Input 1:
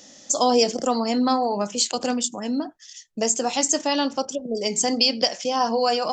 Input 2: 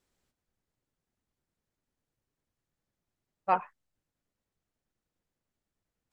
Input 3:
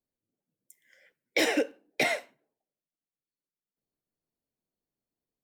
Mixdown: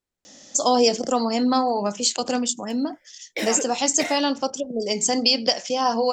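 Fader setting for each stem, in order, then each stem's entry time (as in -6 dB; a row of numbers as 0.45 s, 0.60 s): +0.5 dB, -7.5 dB, -3.0 dB; 0.25 s, 0.00 s, 2.00 s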